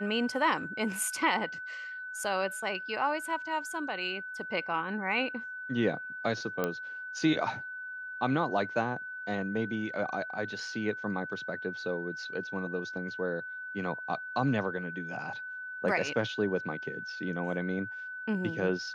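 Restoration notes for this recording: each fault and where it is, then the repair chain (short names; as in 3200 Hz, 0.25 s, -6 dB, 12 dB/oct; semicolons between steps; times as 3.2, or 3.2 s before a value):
tone 1500 Hz -38 dBFS
6.64 pop -16 dBFS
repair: de-click; notch 1500 Hz, Q 30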